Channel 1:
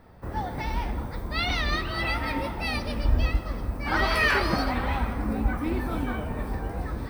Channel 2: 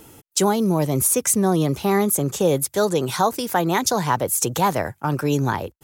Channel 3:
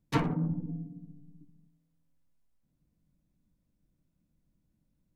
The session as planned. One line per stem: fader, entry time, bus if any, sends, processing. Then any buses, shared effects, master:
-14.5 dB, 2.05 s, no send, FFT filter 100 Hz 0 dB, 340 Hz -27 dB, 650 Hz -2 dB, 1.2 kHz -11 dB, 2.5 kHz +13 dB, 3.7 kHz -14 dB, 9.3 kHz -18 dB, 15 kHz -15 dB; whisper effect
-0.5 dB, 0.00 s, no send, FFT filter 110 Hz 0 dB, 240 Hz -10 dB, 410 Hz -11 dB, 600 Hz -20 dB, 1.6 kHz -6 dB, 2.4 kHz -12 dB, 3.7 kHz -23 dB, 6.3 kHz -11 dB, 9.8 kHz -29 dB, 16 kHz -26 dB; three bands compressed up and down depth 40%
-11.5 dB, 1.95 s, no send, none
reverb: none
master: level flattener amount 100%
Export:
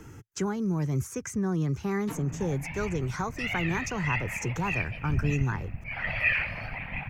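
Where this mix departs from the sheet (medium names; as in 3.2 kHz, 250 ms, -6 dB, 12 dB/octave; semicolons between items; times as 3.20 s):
stem 1 -14.5 dB -> -8.0 dB; master: missing level flattener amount 100%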